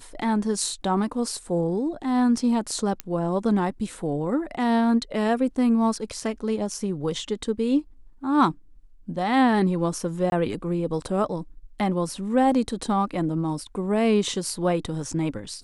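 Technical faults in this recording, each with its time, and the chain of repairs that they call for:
3.00 s: pop -12 dBFS
10.30–10.32 s: dropout 21 ms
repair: de-click; interpolate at 10.30 s, 21 ms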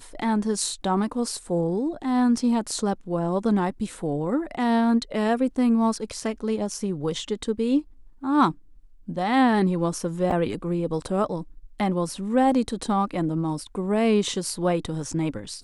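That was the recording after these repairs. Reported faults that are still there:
nothing left

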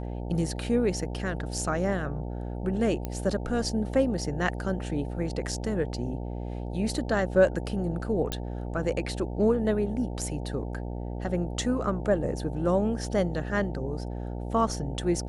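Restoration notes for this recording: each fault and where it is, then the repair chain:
buzz 60 Hz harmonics 15 -34 dBFS
3.05 s: pop -18 dBFS
8.32 s: pop -14 dBFS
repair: de-click; de-hum 60 Hz, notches 15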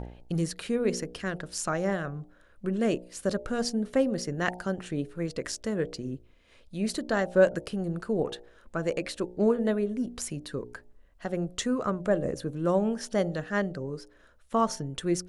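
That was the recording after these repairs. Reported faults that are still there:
nothing left

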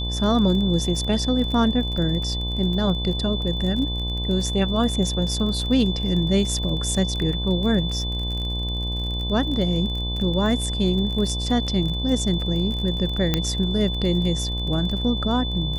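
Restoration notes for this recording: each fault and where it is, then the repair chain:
buzz 60 Hz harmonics 18 -27 dBFS
crackle 28 per s -29 dBFS
whine 3.5 kHz -29 dBFS
13.34 s: pop -6 dBFS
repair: de-click; band-stop 3.5 kHz, Q 30; de-hum 60 Hz, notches 18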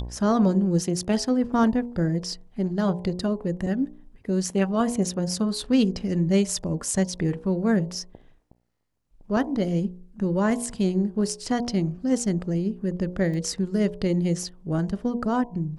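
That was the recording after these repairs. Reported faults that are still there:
13.34 s: pop

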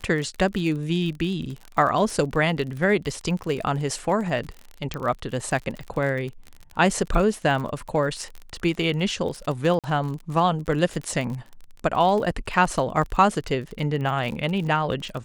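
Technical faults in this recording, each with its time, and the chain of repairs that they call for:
crackle 41 per s -30 dBFS
4.94 s: pop -15 dBFS
9.79–9.84 s: dropout 47 ms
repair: de-click; interpolate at 9.79 s, 47 ms

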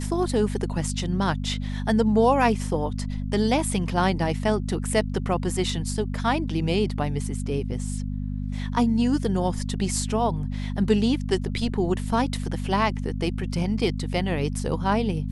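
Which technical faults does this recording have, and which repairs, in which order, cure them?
hum 50 Hz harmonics 5 -29 dBFS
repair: de-hum 50 Hz, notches 5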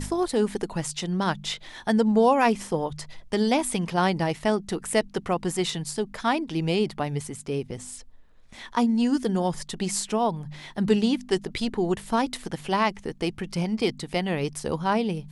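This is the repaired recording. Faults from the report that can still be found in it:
nothing left

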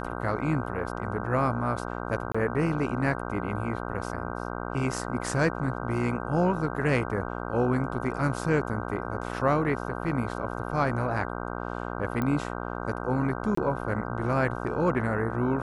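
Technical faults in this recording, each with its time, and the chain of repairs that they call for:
buzz 60 Hz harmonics 26 -34 dBFS
2.32–2.35 s: dropout 25 ms
12.22 s: pop -17 dBFS
13.55–13.57 s: dropout 24 ms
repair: de-click; de-hum 60 Hz, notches 26; interpolate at 2.32 s, 25 ms; interpolate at 13.55 s, 24 ms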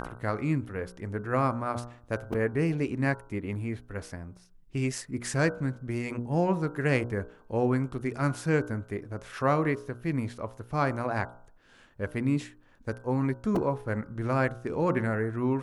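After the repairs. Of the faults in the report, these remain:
12.22 s: pop

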